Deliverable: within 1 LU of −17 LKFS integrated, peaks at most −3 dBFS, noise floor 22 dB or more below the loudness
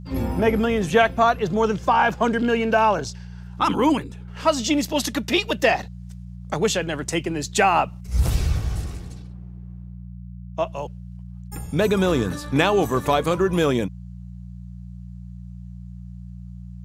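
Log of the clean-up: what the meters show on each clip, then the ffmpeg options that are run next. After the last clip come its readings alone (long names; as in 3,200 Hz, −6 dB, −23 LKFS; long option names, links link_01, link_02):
mains hum 60 Hz; hum harmonics up to 180 Hz; level of the hum −34 dBFS; integrated loudness −21.5 LKFS; sample peak −5.0 dBFS; target loudness −17.0 LKFS
→ -af "bandreject=frequency=60:width_type=h:width=4,bandreject=frequency=120:width_type=h:width=4,bandreject=frequency=180:width_type=h:width=4"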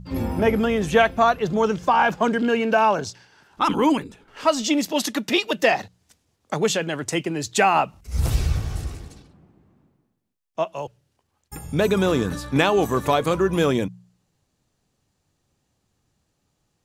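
mains hum none found; integrated loudness −21.5 LKFS; sample peak −5.0 dBFS; target loudness −17.0 LKFS
→ -af "volume=4.5dB,alimiter=limit=-3dB:level=0:latency=1"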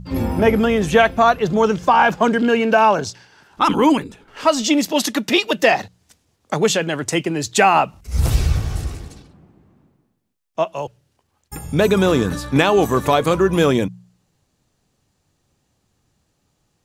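integrated loudness −17.5 LKFS; sample peak −3.0 dBFS; background noise floor −69 dBFS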